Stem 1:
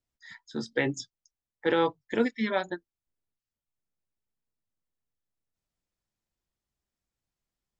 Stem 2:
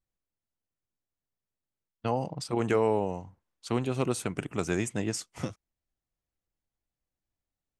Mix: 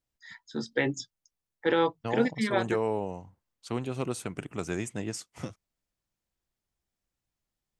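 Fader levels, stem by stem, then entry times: 0.0, -3.5 dB; 0.00, 0.00 s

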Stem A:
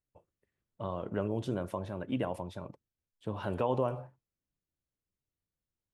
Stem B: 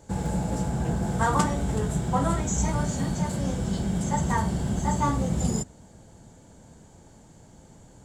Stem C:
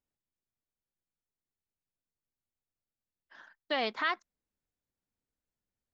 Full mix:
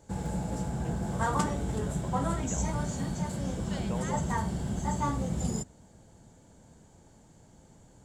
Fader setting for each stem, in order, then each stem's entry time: -8.0, -5.5, -14.5 dB; 0.30, 0.00, 0.00 s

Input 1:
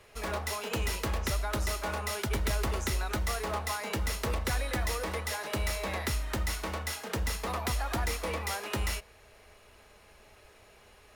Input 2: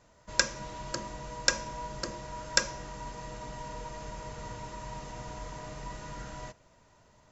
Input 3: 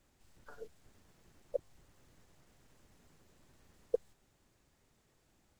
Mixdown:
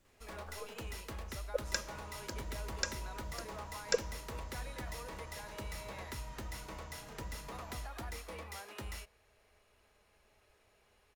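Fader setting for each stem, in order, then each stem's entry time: -12.5, -10.5, +0.5 dB; 0.05, 1.35, 0.00 s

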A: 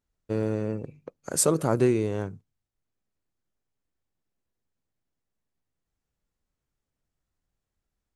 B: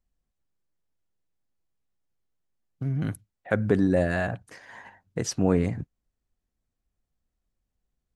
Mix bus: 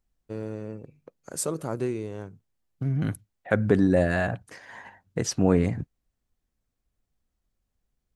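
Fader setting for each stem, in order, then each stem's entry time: -7.0, +1.5 dB; 0.00, 0.00 s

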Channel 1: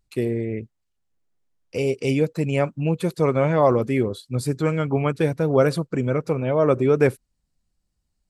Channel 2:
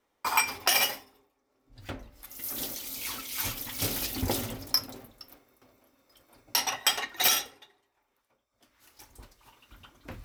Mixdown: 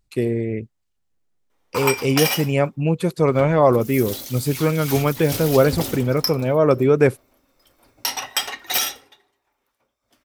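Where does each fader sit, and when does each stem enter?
+2.5, +2.5 dB; 0.00, 1.50 s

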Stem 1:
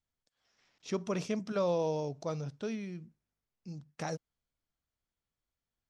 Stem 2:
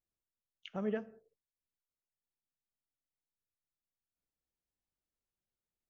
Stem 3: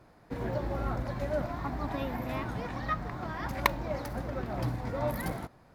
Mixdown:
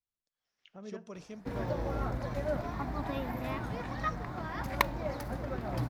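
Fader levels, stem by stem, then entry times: -12.0, -10.0, -1.5 dB; 0.00, 0.00, 1.15 s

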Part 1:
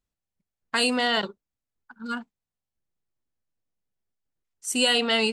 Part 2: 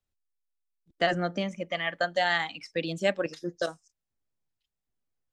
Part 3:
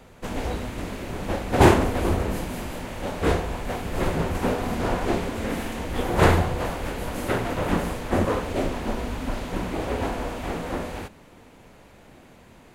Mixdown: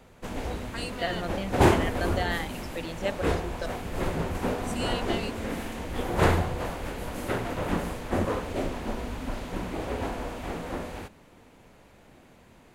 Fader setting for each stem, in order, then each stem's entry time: -14.0, -5.5, -4.5 dB; 0.00, 0.00, 0.00 s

